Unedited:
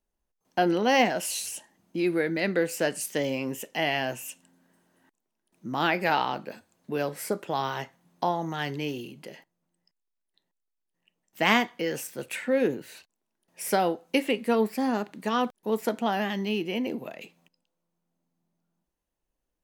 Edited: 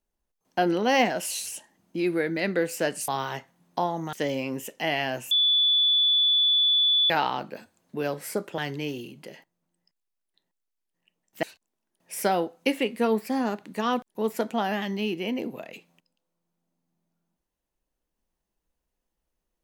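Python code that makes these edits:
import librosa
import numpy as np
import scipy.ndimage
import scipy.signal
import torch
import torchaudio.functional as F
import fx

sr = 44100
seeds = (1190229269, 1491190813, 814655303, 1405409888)

y = fx.edit(x, sr, fx.bleep(start_s=4.26, length_s=1.79, hz=3460.0, db=-18.0),
    fx.move(start_s=7.53, length_s=1.05, to_s=3.08),
    fx.cut(start_s=11.43, length_s=1.48), tone=tone)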